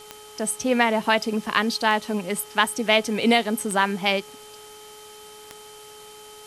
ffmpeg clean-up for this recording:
-af "adeclick=t=4,bandreject=f=423.9:t=h:w=4,bandreject=f=847.8:t=h:w=4,bandreject=f=1.2717k:t=h:w=4,bandreject=f=3.1k:w=30,afwtdn=0.005"

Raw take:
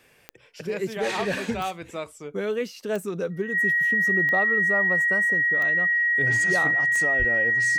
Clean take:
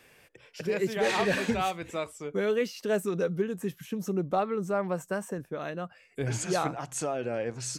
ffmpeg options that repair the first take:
-filter_complex "[0:a]adeclick=t=4,bandreject=f=1.9k:w=30,asplit=3[a][b][c];[a]afade=t=out:st=7.18:d=0.02[d];[b]highpass=f=140:w=0.5412,highpass=f=140:w=1.3066,afade=t=in:st=7.18:d=0.02,afade=t=out:st=7.3:d=0.02[e];[c]afade=t=in:st=7.3:d=0.02[f];[d][e][f]amix=inputs=3:normalize=0"

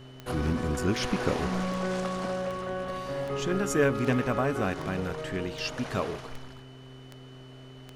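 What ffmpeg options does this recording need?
-af "adeclick=t=4,bandreject=f=129.7:t=h:w=4,bandreject=f=259.4:t=h:w=4,bandreject=f=389.1:t=h:w=4,bandreject=f=3k:w=30"

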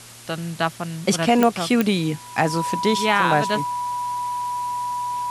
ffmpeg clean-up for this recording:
-af "adeclick=t=4,bandreject=f=117.8:t=h:w=4,bandreject=f=235.6:t=h:w=4,bandreject=f=353.4:t=h:w=4,bandreject=f=980:w=30,afwtdn=0.0089"

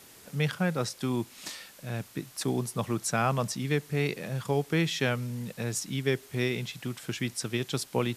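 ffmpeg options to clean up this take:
-af "adeclick=t=4,afwtdn=0.0025"

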